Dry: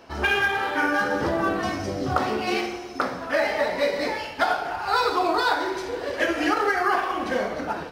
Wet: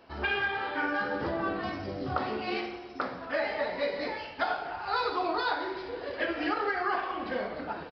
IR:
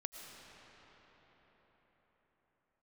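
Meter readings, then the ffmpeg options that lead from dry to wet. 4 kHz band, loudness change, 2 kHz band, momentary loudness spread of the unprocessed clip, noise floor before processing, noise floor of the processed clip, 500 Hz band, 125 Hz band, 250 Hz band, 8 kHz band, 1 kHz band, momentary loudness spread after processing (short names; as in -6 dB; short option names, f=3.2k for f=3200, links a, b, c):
-7.5 dB, -7.5 dB, -7.5 dB, 7 LU, -35 dBFS, -43 dBFS, -7.5 dB, -7.5 dB, -7.5 dB, under -25 dB, -7.5 dB, 7 LU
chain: -af "aresample=11025,aresample=44100,volume=-7.5dB"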